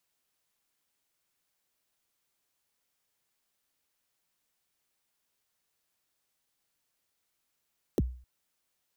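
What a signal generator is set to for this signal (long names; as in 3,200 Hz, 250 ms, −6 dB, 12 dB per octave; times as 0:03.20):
synth kick length 0.26 s, from 500 Hz, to 62 Hz, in 33 ms, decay 0.44 s, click on, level −20 dB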